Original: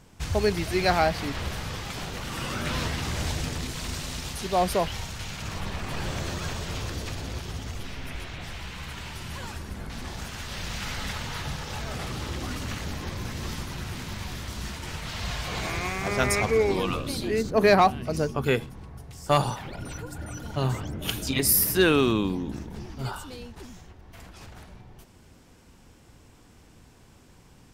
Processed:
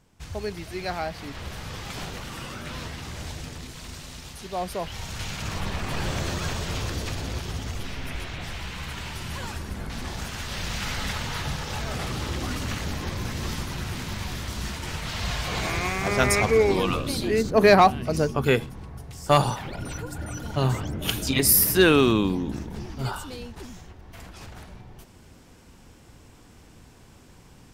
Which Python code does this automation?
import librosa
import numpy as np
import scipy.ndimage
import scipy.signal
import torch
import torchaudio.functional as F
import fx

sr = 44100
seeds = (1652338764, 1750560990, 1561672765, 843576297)

y = fx.gain(x, sr, db=fx.line((1.06, -8.0), (2.02, 0.5), (2.62, -6.5), (4.77, -6.5), (5.18, 3.0)))